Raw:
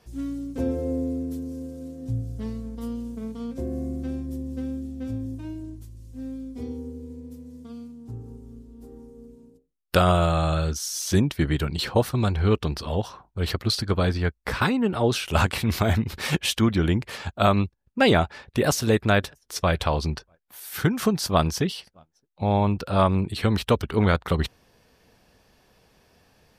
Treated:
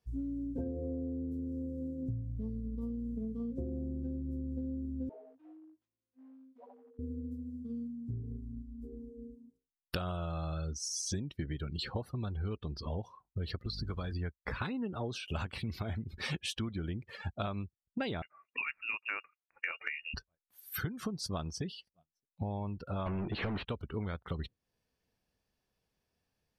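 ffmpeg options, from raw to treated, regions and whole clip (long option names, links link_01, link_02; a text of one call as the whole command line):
ffmpeg -i in.wav -filter_complex "[0:a]asettb=1/sr,asplit=3[link_01][link_02][link_03];[link_01]atrim=end=5.094[link_04];[link_02]atrim=start=5.09:end=6.99,asetpts=PTS-STARTPTS,afade=type=in:duration=0.004:curve=qsin,afade=type=out:start_time=1.896:duration=0.004:curve=qsin,aeval=exprs='0.0282*(abs(mod(val(0)/0.0282+3,4)-2)-1)':channel_layout=same,highpass=670,lowpass=2100[link_05];[link_03]atrim=start=6.986[link_06];[link_04][link_05]acrossfade=duration=0.004:curve1=hsin:curve2=qsin[link_07];[link_07][link_06]acrossfade=duration=0.004:curve1=qsin:curve2=hsin,asettb=1/sr,asplit=3[link_08][link_09][link_10];[link_08]atrim=end=13.654[link_11];[link_09]atrim=start=13.65:end=14.12,asetpts=PTS-STARTPTS,afade=type=in:duration=0.004:curve=qsin,afade=type=out:start_time=0.466:duration=0.004:curve=qsin,aeval=exprs='val(0)+0.5*0.0224*sgn(val(0))':channel_layout=same,aeval=exprs='val(0)+0.0282*(sin(2*PI*50*n/s)+sin(2*PI*2*50*n/s)/2+sin(2*PI*3*50*n/s)/3+sin(2*PI*4*50*n/s)/4+sin(2*PI*5*50*n/s)/5)':channel_layout=same,acrossover=split=270|780[link_12][link_13][link_14];[link_12]acompressor=threshold=-28dB:ratio=4[link_15];[link_13]acompressor=threshold=-36dB:ratio=4[link_16];[link_14]acompressor=threshold=-30dB:ratio=4[link_17];[link_15][link_16][link_17]amix=inputs=3:normalize=0[link_18];[link_10]atrim=start=14.116[link_19];[link_11][link_18]acrossfade=duration=0.004:curve1=hsin:curve2=qsin[link_20];[link_20][link_19]acrossfade=duration=0.004:curve1=qsin:curve2=hsin,asettb=1/sr,asplit=3[link_21][link_22][link_23];[link_21]atrim=end=18.224[link_24];[link_22]atrim=start=18.22:end=20.14,asetpts=PTS-STARTPTS,afade=type=in:duration=0.004:curve=qsin,afade=type=out:start_time=1.916:duration=0.004:curve=qsin,highpass=frequency=610:poles=1,lowpass=frequency=2500:width_type=q:width=0.5098,lowpass=frequency=2500:width_type=q:width=0.6013,lowpass=frequency=2500:width_type=q:width=0.9,lowpass=frequency=2500:width_type=q:width=2.563,afreqshift=-2900[link_25];[link_23]atrim=start=20.136[link_26];[link_24][link_25]acrossfade=duration=0.004:curve1=hsin:curve2=qsin[link_27];[link_27][link_26]acrossfade=duration=0.004:curve1=qsin:curve2=hsin,asettb=1/sr,asplit=3[link_28][link_29][link_30];[link_28]atrim=end=23.064[link_31];[link_29]atrim=start=23.06:end=23.65,asetpts=PTS-STARTPTS,afade=type=in:duration=0.004:curve=qsin,afade=type=out:start_time=0.586:duration=0.004:curve=qsin,lowpass=3500,highshelf=frequency=2300:gain=-8.5,asplit=2[link_32][link_33];[link_33]highpass=frequency=720:poles=1,volume=39dB,asoftclip=type=tanh:threshold=-8.5dB[link_34];[link_32][link_34]amix=inputs=2:normalize=0,lowpass=frequency=1300:poles=1,volume=-6dB[link_35];[link_30]atrim=start=23.646[link_36];[link_31][link_35]acrossfade=duration=0.004:curve1=hsin:curve2=qsin[link_37];[link_37][link_36]acrossfade=duration=0.004:curve1=qsin:curve2=hsin,afftdn=noise_reduction=24:noise_floor=-34,equalizer=frequency=810:width=0.35:gain=-4,acompressor=threshold=-37dB:ratio=8,volume=2.5dB" out.wav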